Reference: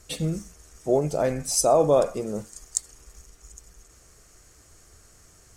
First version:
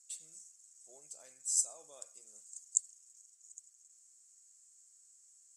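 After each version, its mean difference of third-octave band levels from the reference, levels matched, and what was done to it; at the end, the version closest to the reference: 10.5 dB: band-pass filter 7.6 kHz, Q 6.4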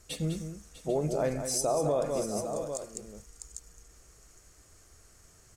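5.5 dB: on a send: multi-tap echo 201/648/796 ms -9/-15/-13 dB; on the sum: peak limiter -14.5 dBFS, peak gain reduction 10 dB; trim -5 dB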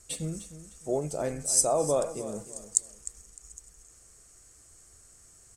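3.0 dB: peaking EQ 8.3 kHz +12.5 dB 0.59 oct; on a send: feedback delay 304 ms, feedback 28%, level -14 dB; on the sum: trim -7.5 dB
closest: third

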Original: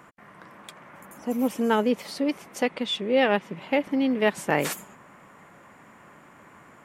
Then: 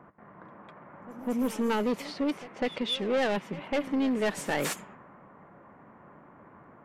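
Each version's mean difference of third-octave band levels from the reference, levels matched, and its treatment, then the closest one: 4.5 dB: level-controlled noise filter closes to 1 kHz, open at -21 dBFS; saturation -22.5 dBFS, distortion -8 dB; pre-echo 201 ms -17 dB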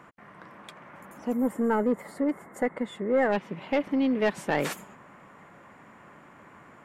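3.0 dB: treble shelf 5.4 kHz -9.5 dB; saturation -16 dBFS, distortion -15 dB; time-frequency box 1.33–3.33 s, 2.2–6.7 kHz -16 dB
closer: second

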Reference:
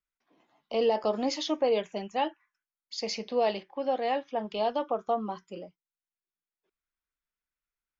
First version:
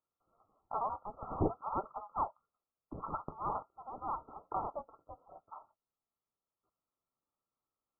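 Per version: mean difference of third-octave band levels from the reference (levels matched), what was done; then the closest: 13.5 dB: brick-wall FIR high-pass 2.4 kHz; frequency inversion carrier 3.8 kHz; trim +8 dB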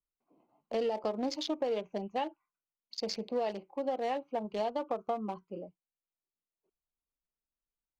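3.5 dB: local Wiener filter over 25 samples; compression, threshold -29 dBFS, peak gain reduction 8 dB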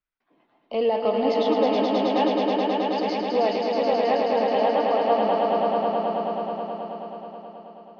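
8.5 dB: Bessel low-pass 2.9 kHz, order 8; on a send: echo with a slow build-up 107 ms, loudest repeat 5, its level -4.5 dB; on the sum: trim +3 dB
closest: second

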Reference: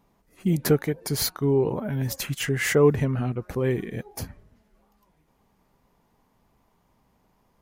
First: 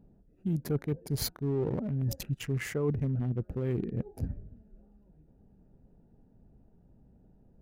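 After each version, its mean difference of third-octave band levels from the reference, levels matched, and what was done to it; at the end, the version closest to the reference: 5.5 dB: local Wiener filter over 41 samples; bass shelf 330 Hz +8 dB; reverse; compression 4:1, threshold -32 dBFS, peak gain reduction 18.5 dB; reverse; trim +1.5 dB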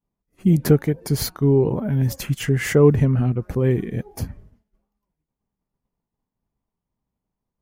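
3.5 dB: band-stop 3.9 kHz, Q 20; expander -51 dBFS; bass shelf 370 Hz +10 dB; trim -1 dB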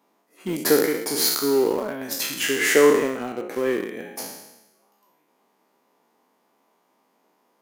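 9.5 dB: spectral sustain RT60 0.98 s; high-pass 260 Hz 24 dB/octave; in parallel at -10 dB: small samples zeroed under -24 dBFS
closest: second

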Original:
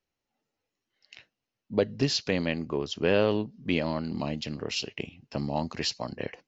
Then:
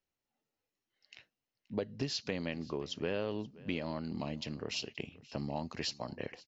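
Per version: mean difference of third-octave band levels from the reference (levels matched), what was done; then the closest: 3.0 dB: compression 3:1, threshold -27 dBFS, peak gain reduction 7 dB; on a send: delay 527 ms -21.5 dB; on the sum: trim -5.5 dB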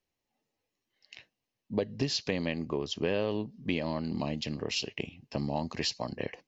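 2.0 dB: band-stop 1.4 kHz, Q 5.3; compression 3:1, threshold -27 dBFS, peak gain reduction 7 dB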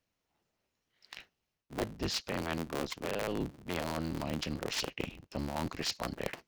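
11.5 dB: cycle switcher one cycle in 3, inverted; reverse; compression 10:1, threshold -33 dBFS, peak gain reduction 16 dB; reverse; trim +2 dB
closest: second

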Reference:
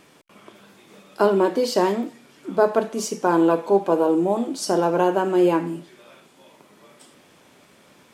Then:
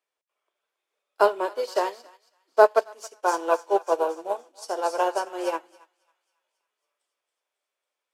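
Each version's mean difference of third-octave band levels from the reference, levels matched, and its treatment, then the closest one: 9.5 dB: high-pass 470 Hz 24 dB/octave; on a send: thinning echo 275 ms, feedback 72%, high-pass 1.1 kHz, level -6 dB; on the sum: upward expansion 2.5:1, over -40 dBFS; trim +5 dB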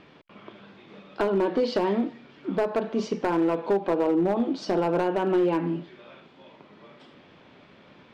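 5.0 dB: low-pass 4 kHz 24 dB/octave; bass shelf 220 Hz +4.5 dB; compression 16:1, threshold -18 dBFS, peak gain reduction 9 dB; hard clipper -17 dBFS, distortion -16 dB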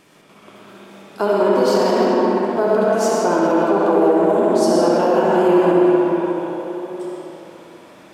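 7.0 dB: algorithmic reverb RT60 3.8 s, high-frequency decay 0.6×, pre-delay 45 ms, DRR -3 dB; peak limiter -8.5 dBFS, peak gain reduction 6 dB; tape echo 64 ms, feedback 88%, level -4 dB, low-pass 3.3 kHz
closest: second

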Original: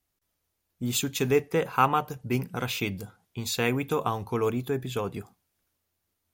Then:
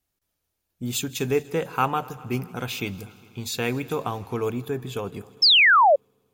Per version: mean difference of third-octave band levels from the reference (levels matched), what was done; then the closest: 2.0 dB: peaking EQ 1.1 kHz -2.5 dB 0.44 oct; band-stop 2 kHz, Q 21; multi-head delay 81 ms, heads second and third, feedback 63%, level -23 dB; painted sound fall, 5.42–5.96 s, 530–5500 Hz -15 dBFS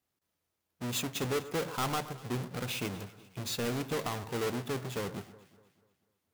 8.5 dB: square wave that keeps the level; high-pass 98 Hz 12 dB/octave; saturation -20 dBFS, distortion -9 dB; echo whose repeats swap between lows and highs 122 ms, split 1.7 kHz, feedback 63%, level -14 dB; trim -7.5 dB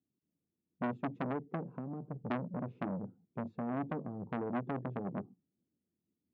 13.0 dB: compression 6:1, threshold -28 dBFS, peak gain reduction 12.5 dB; Butterworth band-pass 220 Hz, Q 1.2; transformer saturation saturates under 1.2 kHz; trim +4.5 dB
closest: first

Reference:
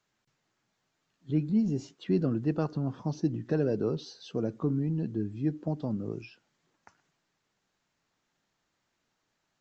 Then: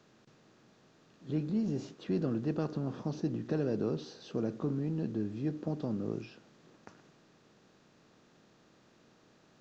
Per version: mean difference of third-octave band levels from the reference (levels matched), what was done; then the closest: 5.5 dB: spectral levelling over time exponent 0.6; trim -7 dB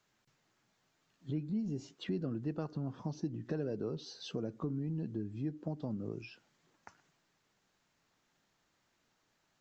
2.5 dB: compression 2.5:1, threshold -41 dBFS, peak gain reduction 13 dB; trim +2 dB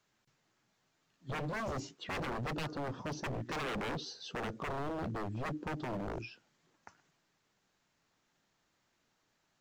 13.5 dB: wavefolder -34 dBFS; trim +1.5 dB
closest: second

